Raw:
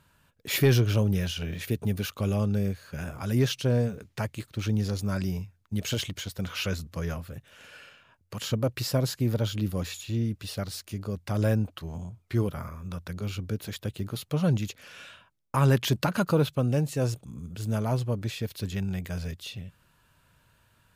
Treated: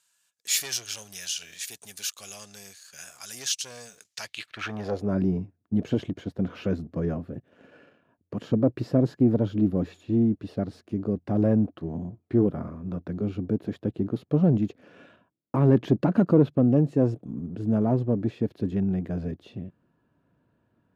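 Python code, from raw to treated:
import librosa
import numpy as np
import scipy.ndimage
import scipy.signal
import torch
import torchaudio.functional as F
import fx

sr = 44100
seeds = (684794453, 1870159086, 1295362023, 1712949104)

p1 = fx.leveller(x, sr, passes=1)
p2 = fx.small_body(p1, sr, hz=(700.0, 1700.0), ring_ms=45, db=6)
p3 = np.clip(p2, -10.0 ** (-19.5 / 20.0), 10.0 ** (-19.5 / 20.0))
p4 = p2 + (p3 * 10.0 ** (-9.0 / 20.0))
p5 = fx.filter_sweep_bandpass(p4, sr, from_hz=7100.0, to_hz=290.0, start_s=4.11, end_s=5.17, q=1.9)
y = p5 * 10.0 ** (6.5 / 20.0)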